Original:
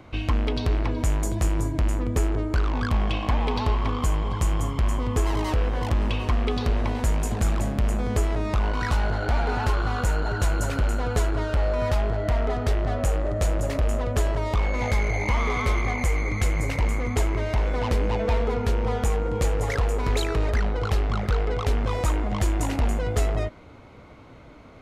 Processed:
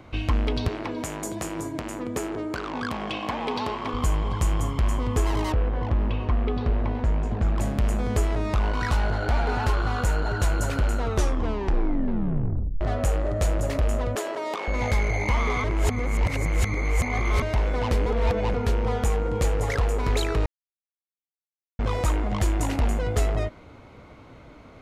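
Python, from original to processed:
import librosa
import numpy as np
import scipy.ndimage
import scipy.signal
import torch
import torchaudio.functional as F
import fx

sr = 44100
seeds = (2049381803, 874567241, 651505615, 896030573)

y = fx.highpass(x, sr, hz=200.0, slope=12, at=(0.68, 3.94))
y = fx.spacing_loss(y, sr, db_at_10k=28, at=(5.52, 7.58))
y = fx.highpass(y, sr, hz=280.0, slope=24, at=(14.15, 14.68))
y = fx.edit(y, sr, fx.tape_stop(start_s=10.95, length_s=1.86),
    fx.reverse_span(start_s=15.64, length_s=1.78),
    fx.reverse_span(start_s=18.06, length_s=0.48),
    fx.silence(start_s=20.46, length_s=1.33), tone=tone)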